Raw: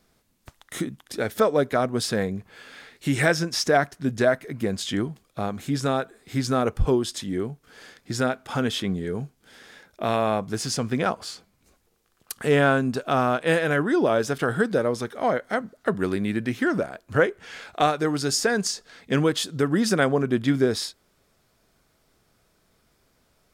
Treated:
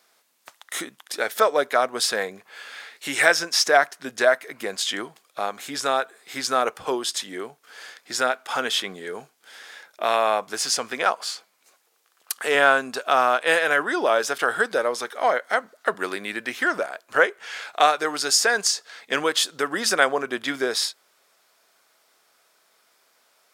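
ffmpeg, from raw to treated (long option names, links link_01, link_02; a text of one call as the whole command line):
ffmpeg -i in.wav -filter_complex "[0:a]asettb=1/sr,asplit=3[link_01][link_02][link_03];[link_01]atrim=end=10.924[link_04];[link_02]atrim=start=10.92:end=12.55,asetpts=PTS-STARTPTS,afade=type=in:duration=0.004:curve=qsin,afade=type=out:start_time=1.626:duration=0.004:curve=qsin,highpass=frequency=180:poles=1[link_05];[link_03]atrim=start=12.546[link_06];[link_04][link_05]acrossfade=duration=0.004:curve1=hsin:curve2=qsin[link_07];[link_07][link_06]acrossfade=duration=0.004:curve1=qsin:curve2=hsin,highpass=690,volume=6dB" out.wav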